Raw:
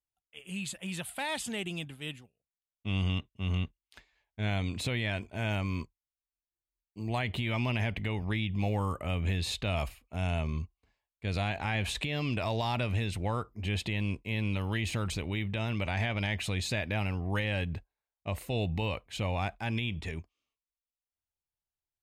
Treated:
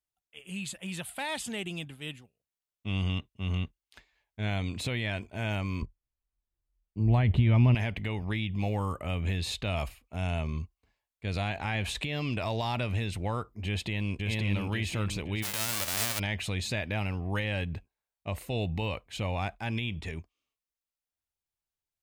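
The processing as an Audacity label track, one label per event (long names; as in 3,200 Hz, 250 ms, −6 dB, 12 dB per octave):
5.820000	7.750000	RIAA equalisation playback
13.660000	14.180000	delay throw 530 ms, feedback 50%, level −2 dB
15.420000	16.180000	spectral envelope flattened exponent 0.1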